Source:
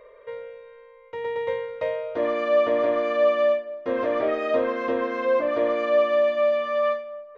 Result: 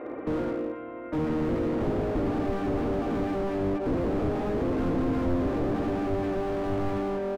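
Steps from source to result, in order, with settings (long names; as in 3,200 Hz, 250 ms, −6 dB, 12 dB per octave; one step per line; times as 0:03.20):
sub-octave generator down 1 octave, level +2 dB
mains-hum notches 50/100/150/200/250/300/350 Hz
in parallel at +2.5 dB: brickwall limiter −18 dBFS, peak gain reduction 8 dB
on the sum: downward compressor 6 to 1, threshold −21 dBFS, peak gain reduction 9.5 dB
mains hum 60 Hz, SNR 29 dB
on a send: reverse bouncing-ball delay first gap 50 ms, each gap 1.3×, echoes 5
on the sum: pitch-shifted copies added −12 semitones −11 dB, −7 semitones −1 dB, +4 semitones −12 dB
loudspeaker in its box 160–2,600 Hz, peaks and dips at 160 Hz −10 dB, 280 Hz +9 dB, 430 Hz +4 dB, 820 Hz +7 dB, 1,400 Hz +4 dB
slew-rate limiting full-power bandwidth 26 Hz
level −2.5 dB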